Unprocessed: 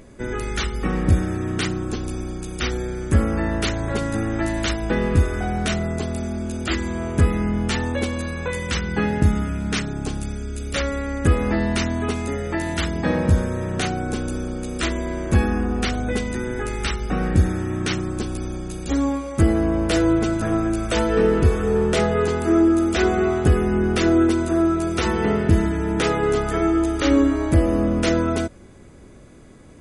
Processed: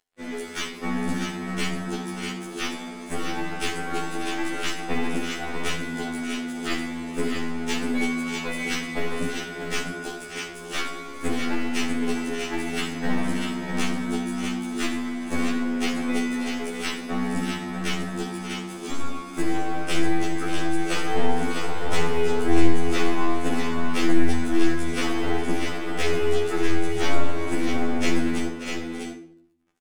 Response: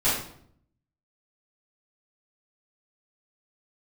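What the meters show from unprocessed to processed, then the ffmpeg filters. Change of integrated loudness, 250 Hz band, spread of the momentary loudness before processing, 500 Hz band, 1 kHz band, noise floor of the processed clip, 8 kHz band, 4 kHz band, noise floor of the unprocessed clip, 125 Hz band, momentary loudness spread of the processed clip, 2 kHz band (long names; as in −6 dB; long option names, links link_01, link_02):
−5.5 dB, −5.0 dB, 9 LU, −6.5 dB, −2.5 dB, −38 dBFS, −1.5 dB, −0.5 dB, −43 dBFS, −12.5 dB, 7 LU, −1.0 dB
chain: -filter_complex "[0:a]highpass=frequency=210:width=0.5412,highpass=frequency=210:width=1.3066,aeval=exprs='sgn(val(0))*max(abs(val(0))-0.01,0)':channel_layout=same,aecho=1:1:586|645:0.237|0.501,aeval=exprs='clip(val(0),-1,0.0562)':channel_layout=same,asplit=2[link_01][link_02];[1:a]atrim=start_sample=2205[link_03];[link_02][link_03]afir=irnorm=-1:irlink=0,volume=-17dB[link_04];[link_01][link_04]amix=inputs=2:normalize=0,afftfilt=real='re*2*eq(mod(b,4),0)':imag='im*2*eq(mod(b,4),0)':win_size=2048:overlap=0.75"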